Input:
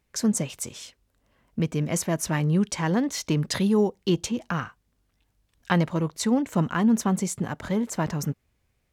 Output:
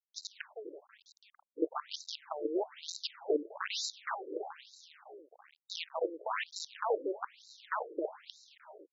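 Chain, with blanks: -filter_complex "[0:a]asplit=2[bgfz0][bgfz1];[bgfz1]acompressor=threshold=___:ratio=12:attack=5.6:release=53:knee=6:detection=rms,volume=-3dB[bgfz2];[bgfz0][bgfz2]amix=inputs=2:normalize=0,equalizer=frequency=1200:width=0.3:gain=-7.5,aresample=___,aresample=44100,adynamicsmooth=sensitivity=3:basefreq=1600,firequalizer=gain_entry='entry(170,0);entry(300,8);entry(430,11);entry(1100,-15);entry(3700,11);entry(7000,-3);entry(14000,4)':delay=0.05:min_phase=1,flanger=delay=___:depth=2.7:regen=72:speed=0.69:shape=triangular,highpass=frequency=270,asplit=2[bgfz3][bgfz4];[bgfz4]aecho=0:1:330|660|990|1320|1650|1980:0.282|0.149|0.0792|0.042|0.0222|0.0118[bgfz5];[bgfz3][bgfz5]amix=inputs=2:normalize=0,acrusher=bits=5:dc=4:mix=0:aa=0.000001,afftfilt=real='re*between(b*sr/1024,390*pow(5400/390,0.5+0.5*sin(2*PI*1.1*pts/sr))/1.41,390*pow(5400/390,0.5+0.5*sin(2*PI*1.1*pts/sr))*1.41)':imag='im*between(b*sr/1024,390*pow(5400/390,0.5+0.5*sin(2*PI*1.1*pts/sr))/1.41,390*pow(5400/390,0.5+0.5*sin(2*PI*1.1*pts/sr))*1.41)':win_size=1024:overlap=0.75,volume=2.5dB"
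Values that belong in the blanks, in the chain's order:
-31dB, 16000, 0.8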